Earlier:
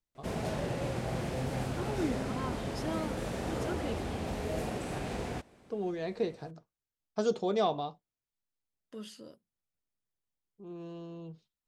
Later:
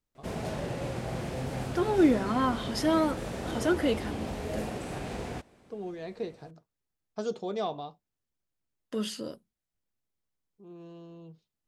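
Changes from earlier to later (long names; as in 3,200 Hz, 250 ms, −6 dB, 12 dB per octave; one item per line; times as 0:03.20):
first voice −3.5 dB
second voice +12.0 dB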